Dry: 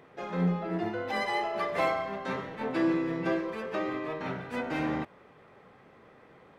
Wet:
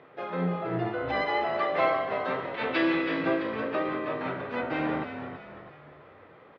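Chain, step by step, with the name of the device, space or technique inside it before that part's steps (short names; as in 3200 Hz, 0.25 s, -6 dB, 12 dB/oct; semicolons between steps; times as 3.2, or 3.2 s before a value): 2.54–3.22 weighting filter D; frequency-shifting delay pedal into a guitar cabinet (frequency-shifting echo 0.328 s, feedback 45%, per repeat -54 Hz, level -8.5 dB; speaker cabinet 110–4000 Hz, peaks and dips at 200 Hz -7 dB, 590 Hz +3 dB, 1300 Hz +3 dB); gain +1.5 dB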